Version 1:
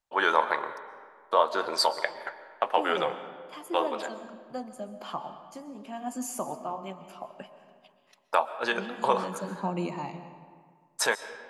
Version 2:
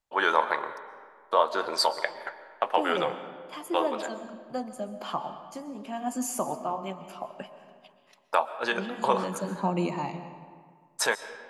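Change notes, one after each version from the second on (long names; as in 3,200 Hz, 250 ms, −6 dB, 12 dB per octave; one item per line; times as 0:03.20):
second voice +3.5 dB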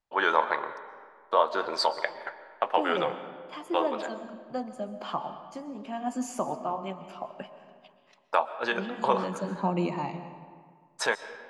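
master: add high-frequency loss of the air 78 metres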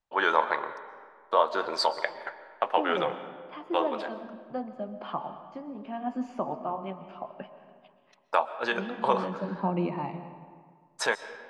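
second voice: add high-frequency loss of the air 300 metres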